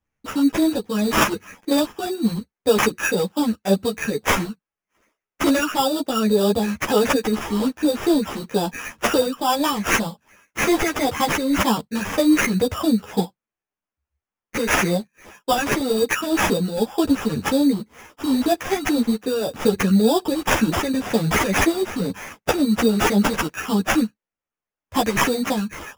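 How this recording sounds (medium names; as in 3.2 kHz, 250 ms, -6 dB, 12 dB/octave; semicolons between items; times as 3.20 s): phasing stages 12, 1.9 Hz, lowest notch 730–4800 Hz; aliases and images of a low sample rate 4.2 kHz, jitter 0%; a shimmering, thickened sound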